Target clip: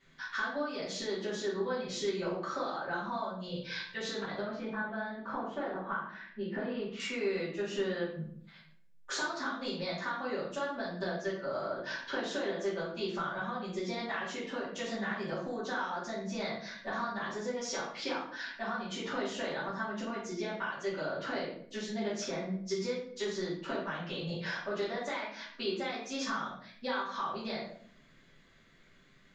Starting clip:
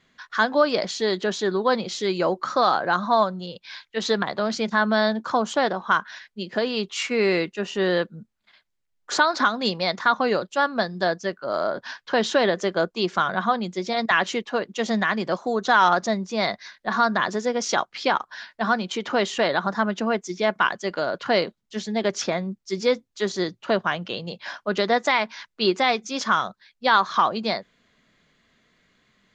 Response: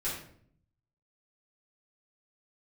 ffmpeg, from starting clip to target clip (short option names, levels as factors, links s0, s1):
-filter_complex "[0:a]acompressor=threshold=0.0251:ratio=10,asettb=1/sr,asplit=3[s0][s1][s2];[s0]atrim=end=4.404[s3];[s1]atrim=start=4.4:end=7,asetpts=PTS-STARTPTS,afade=t=in:d=0.004:c=qsin,afade=t=out:st=2.596:d=0.004:c=qsin,lowpass=2000[s4];[s2]atrim=start=6.996[s5];[s3][s4]acrossfade=d=0.004:c1=hsin:c2=qsin[s6];[s6][s5]acrossfade=d=0.004:c1=qsin:c2=hsin[s7];[1:a]atrim=start_sample=2205[s8];[s7][s8]afir=irnorm=-1:irlink=0,volume=0.596"